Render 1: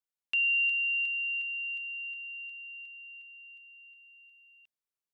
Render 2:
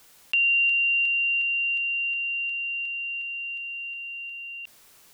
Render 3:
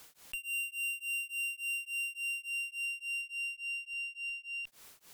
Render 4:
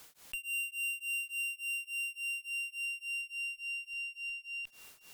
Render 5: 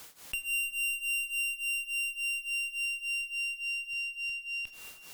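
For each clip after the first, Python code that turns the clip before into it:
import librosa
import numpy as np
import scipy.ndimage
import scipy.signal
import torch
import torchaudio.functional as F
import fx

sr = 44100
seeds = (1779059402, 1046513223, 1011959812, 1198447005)

y1 = fx.env_flatten(x, sr, amount_pct=50)
y1 = y1 * 10.0 ** (5.5 / 20.0)
y2 = fx.tube_stage(y1, sr, drive_db=35.0, bias=0.3)
y2 = y2 * np.abs(np.cos(np.pi * 3.5 * np.arange(len(y2)) / sr))
y2 = y2 * 10.0 ** (1.5 / 20.0)
y3 = fx.echo_feedback(y2, sr, ms=1089, feedback_pct=26, wet_db=-19.0)
y4 = fx.diode_clip(y3, sr, knee_db=-36.5)
y4 = fx.rev_plate(y4, sr, seeds[0], rt60_s=3.0, hf_ratio=0.45, predelay_ms=0, drr_db=10.0)
y4 = y4 * 10.0 ** (6.5 / 20.0)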